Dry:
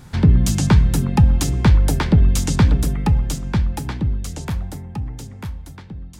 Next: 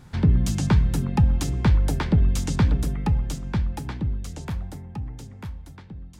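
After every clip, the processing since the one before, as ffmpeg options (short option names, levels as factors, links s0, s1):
-af "highshelf=f=5900:g=-5.5,volume=0.531"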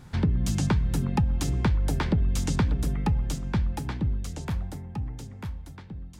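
-af "acompressor=threshold=0.1:ratio=6"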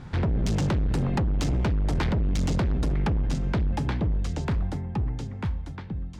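-af "volume=26.6,asoftclip=hard,volume=0.0376,adynamicsmooth=sensitivity=4:basefreq=4900,volume=2.11"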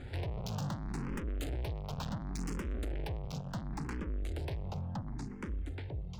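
-filter_complex "[0:a]asoftclip=type=tanh:threshold=0.0168,asplit=2[s0][s1];[s1]afreqshift=0.7[s2];[s0][s2]amix=inputs=2:normalize=1,volume=1.26"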